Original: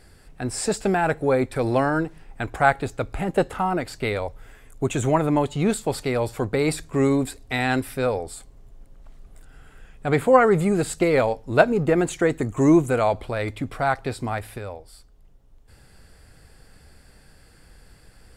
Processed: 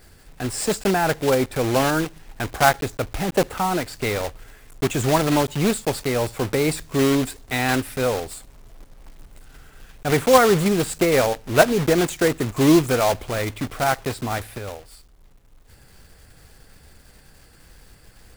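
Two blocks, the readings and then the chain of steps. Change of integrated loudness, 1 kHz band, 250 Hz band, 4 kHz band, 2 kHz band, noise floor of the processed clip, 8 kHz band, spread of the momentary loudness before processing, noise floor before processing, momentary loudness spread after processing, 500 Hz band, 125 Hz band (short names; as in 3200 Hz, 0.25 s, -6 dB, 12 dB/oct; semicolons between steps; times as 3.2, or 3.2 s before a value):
+1.5 dB, +1.5 dB, +1.0 dB, +8.5 dB, +2.0 dB, -51 dBFS, +6.0 dB, 12 LU, -52 dBFS, 12 LU, +1.0 dB, +1.0 dB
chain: block floating point 3-bit; gain +1 dB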